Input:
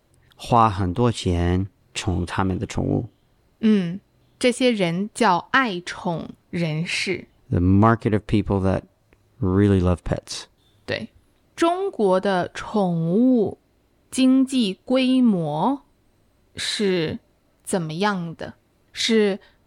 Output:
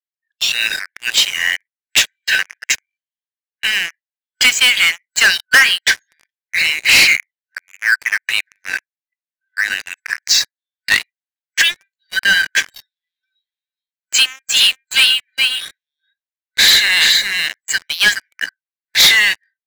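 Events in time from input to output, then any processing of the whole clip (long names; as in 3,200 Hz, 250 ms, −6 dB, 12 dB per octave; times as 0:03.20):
0:12.81–0:18.33: single-tap delay 420 ms −6 dB
whole clip: noise reduction from a noise print of the clip's start 25 dB; brick-wall band-pass 1,500–7,800 Hz; leveller curve on the samples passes 5; level +3.5 dB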